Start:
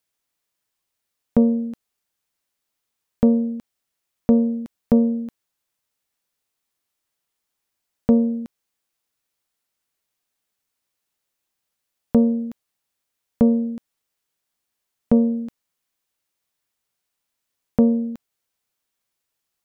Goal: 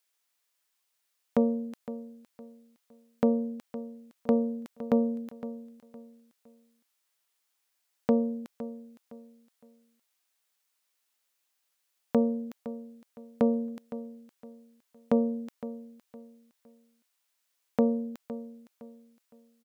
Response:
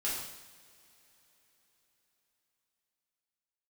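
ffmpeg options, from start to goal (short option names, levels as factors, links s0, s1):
-af "highpass=f=870:p=1,aecho=1:1:512|1024|1536:0.2|0.0619|0.0192,volume=1.26"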